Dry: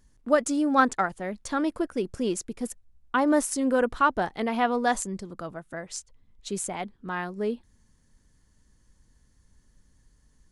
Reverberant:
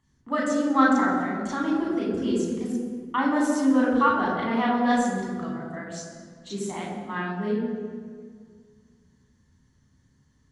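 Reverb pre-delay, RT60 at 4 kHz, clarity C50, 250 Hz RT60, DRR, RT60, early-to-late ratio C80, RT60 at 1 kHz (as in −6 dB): 6 ms, 1.3 s, 1.5 dB, 2.4 s, −3.5 dB, 1.9 s, 3.5 dB, 1.8 s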